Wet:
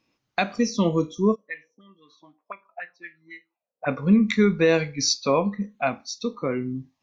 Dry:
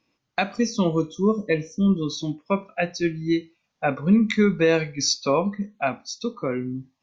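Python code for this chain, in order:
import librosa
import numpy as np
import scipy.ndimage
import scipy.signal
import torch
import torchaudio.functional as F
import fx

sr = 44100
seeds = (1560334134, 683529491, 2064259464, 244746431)

y = fx.auto_wah(x, sr, base_hz=430.0, top_hz=1900.0, q=6.5, full_db=-19.5, direction='up', at=(1.34, 3.86), fade=0.02)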